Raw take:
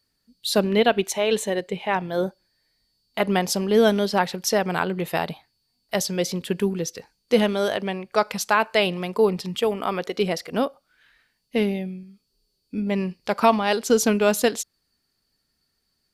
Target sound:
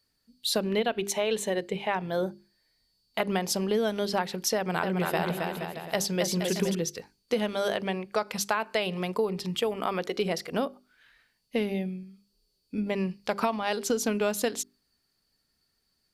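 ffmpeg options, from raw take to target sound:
-filter_complex "[0:a]bandreject=f=50:t=h:w=6,bandreject=f=100:t=h:w=6,bandreject=f=150:t=h:w=6,bandreject=f=200:t=h:w=6,bandreject=f=250:t=h:w=6,bandreject=f=300:t=h:w=6,bandreject=f=350:t=h:w=6,bandreject=f=400:t=h:w=6,acompressor=threshold=-22dB:ratio=6,asettb=1/sr,asplit=3[a][b][c];[a]atrim=end=4.564[d];[b]atrim=start=4.56:end=6.75,asetpts=PTS-STARTPTS,afade=t=in:d=0.004:c=qsin,afade=t=out:st=2.186:d=0.004:c=qsin,aecho=1:1:270|472.5|624.4|738.3|823.7:0.631|0.398|0.251|0.158|0.1,atrim=end_sample=96579[e];[c]atrim=start=6.746[f];[d][e]acrossfade=d=0.004:c1=hsin:c2=qsin[g];[g][f]acrossfade=d=0.004:c1=qsin:c2=hsin,volume=-1.5dB"

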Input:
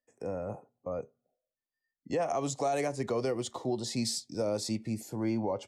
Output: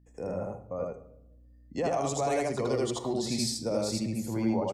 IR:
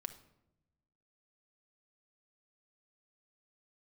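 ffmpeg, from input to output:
-filter_complex "[0:a]aeval=exprs='val(0)+0.00112*(sin(2*PI*60*n/s)+sin(2*PI*2*60*n/s)/2+sin(2*PI*3*60*n/s)/3+sin(2*PI*4*60*n/s)/4+sin(2*PI*5*60*n/s)/5)':c=same,atempo=1.2,asplit=2[a][b];[1:a]atrim=start_sample=2205,adelay=80[c];[b][c]afir=irnorm=-1:irlink=0,volume=2.5dB[d];[a][d]amix=inputs=2:normalize=0"

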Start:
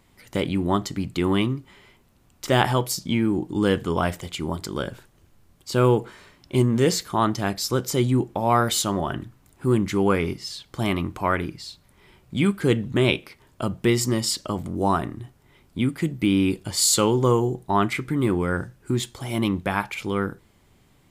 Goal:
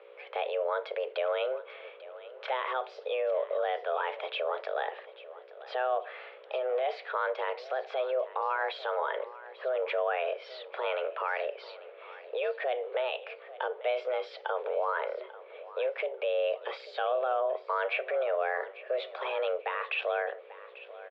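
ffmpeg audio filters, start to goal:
-af "acompressor=threshold=-27dB:ratio=4,alimiter=level_in=0.5dB:limit=-24dB:level=0:latency=1:release=13,volume=-0.5dB,aecho=1:1:842|1684|2526:0.141|0.0381|0.0103,aeval=exprs='val(0)+0.00562*(sin(2*PI*60*n/s)+sin(2*PI*2*60*n/s)/2+sin(2*PI*3*60*n/s)/3+sin(2*PI*4*60*n/s)/4+sin(2*PI*5*60*n/s)/5)':c=same,highpass=f=210:t=q:w=0.5412,highpass=f=210:t=q:w=1.307,lowpass=f=3k:t=q:w=0.5176,lowpass=f=3k:t=q:w=0.7071,lowpass=f=3k:t=q:w=1.932,afreqshift=260,volume=4dB"

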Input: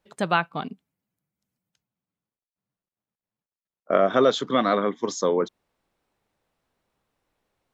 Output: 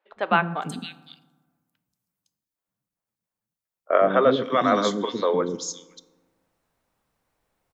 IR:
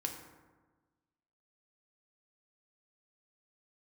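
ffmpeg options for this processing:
-filter_complex "[0:a]acrossover=split=370|3300[a][b][c];[a]adelay=110[d];[c]adelay=510[e];[d][b][e]amix=inputs=3:normalize=0,asplit=2[f][g];[1:a]atrim=start_sample=2205,highshelf=f=6.9k:g=11[h];[g][h]afir=irnorm=-1:irlink=0,volume=-9.5dB[i];[f][i]amix=inputs=2:normalize=0"

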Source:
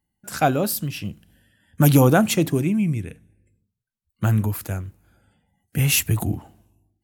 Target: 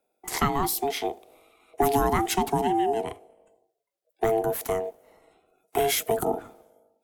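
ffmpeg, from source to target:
-filter_complex "[0:a]aeval=exprs='val(0)*sin(2*PI*560*n/s)':c=same,acrossover=split=170|370[a][b][c];[a]acompressor=threshold=-35dB:ratio=4[d];[b]acompressor=threshold=-37dB:ratio=4[e];[c]acompressor=threshold=-28dB:ratio=4[f];[d][e][f]amix=inputs=3:normalize=0,volume=4.5dB"

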